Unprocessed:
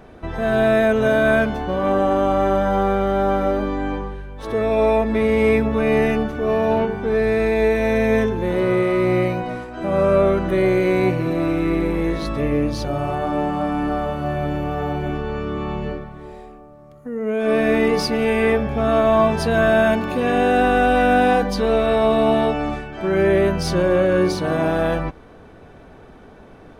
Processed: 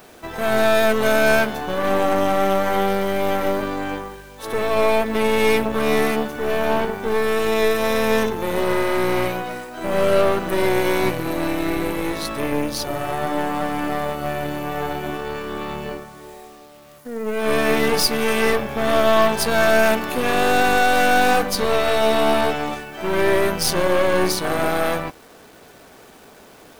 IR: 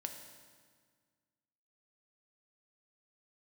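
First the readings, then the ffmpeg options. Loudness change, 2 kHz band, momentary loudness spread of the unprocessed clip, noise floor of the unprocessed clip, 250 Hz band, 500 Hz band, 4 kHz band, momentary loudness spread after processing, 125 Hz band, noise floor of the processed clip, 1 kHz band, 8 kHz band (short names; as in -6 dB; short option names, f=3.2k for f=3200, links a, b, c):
-1.0 dB, +2.5 dB, 10 LU, -44 dBFS, -4.0 dB, -1.5 dB, +6.5 dB, 11 LU, -6.5 dB, -46 dBFS, +0.5 dB, n/a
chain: -af "aemphasis=mode=production:type=bsi,acrusher=bits=7:mix=0:aa=0.000001,aeval=exprs='0.596*(cos(1*acos(clip(val(0)/0.596,-1,1)))-cos(1*PI/2))+0.075*(cos(8*acos(clip(val(0)/0.596,-1,1)))-cos(8*PI/2))':c=same"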